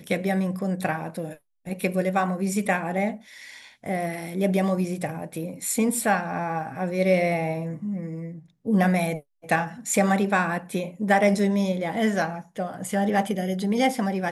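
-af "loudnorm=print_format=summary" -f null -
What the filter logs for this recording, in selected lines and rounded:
Input Integrated:    -25.2 LUFS
Input True Peak:      -7.0 dBTP
Input LRA:             3.4 LU
Input Threshold:     -35.5 LUFS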